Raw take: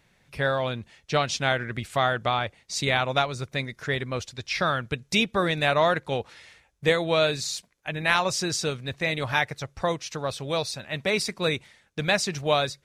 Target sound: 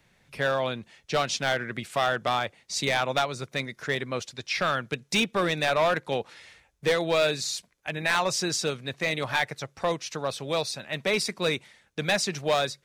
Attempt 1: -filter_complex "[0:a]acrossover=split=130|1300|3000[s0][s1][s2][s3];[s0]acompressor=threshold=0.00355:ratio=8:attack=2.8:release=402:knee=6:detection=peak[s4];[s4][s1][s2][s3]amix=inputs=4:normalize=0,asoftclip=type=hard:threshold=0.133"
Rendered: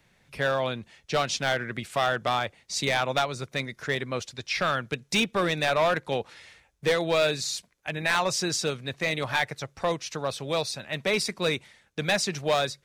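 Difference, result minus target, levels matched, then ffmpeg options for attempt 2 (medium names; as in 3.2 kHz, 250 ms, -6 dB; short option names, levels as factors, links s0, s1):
compression: peak gain reduction -8.5 dB
-filter_complex "[0:a]acrossover=split=130|1300|3000[s0][s1][s2][s3];[s0]acompressor=threshold=0.00119:ratio=8:attack=2.8:release=402:knee=6:detection=peak[s4];[s4][s1][s2][s3]amix=inputs=4:normalize=0,asoftclip=type=hard:threshold=0.133"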